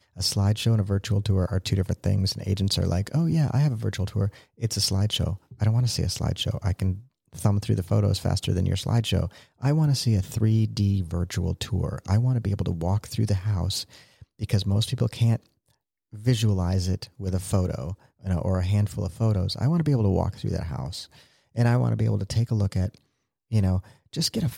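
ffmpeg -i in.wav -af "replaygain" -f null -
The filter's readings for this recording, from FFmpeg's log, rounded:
track_gain = +8.1 dB
track_peak = 0.226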